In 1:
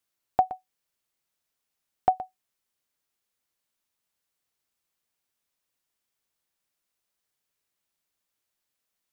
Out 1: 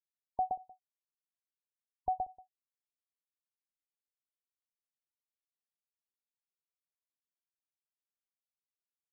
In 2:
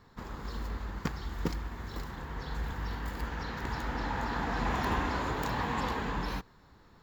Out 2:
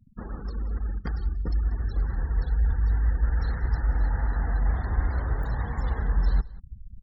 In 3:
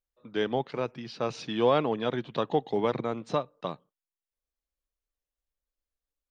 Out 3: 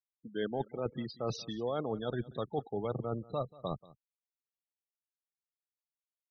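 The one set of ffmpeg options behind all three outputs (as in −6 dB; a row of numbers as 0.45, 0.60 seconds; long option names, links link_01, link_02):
-af "areverse,acompressor=threshold=-38dB:ratio=5,areverse,acrusher=bits=7:mode=log:mix=0:aa=0.000001,equalizer=frequency=200:width_type=o:width=0.33:gain=4,equalizer=frequency=1000:width_type=o:width=0.33:gain=-8,equalizer=frequency=2500:width_type=o:width=0.33:gain=-7,afftfilt=real='re*gte(hypot(re,im),0.00631)':imag='im*gte(hypot(re,im),0.00631)':win_size=1024:overlap=0.75,asubboost=boost=11:cutoff=71,aecho=1:1:185:0.0891,volume=6.5dB"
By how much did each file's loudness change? −9.5, +7.0, −7.5 LU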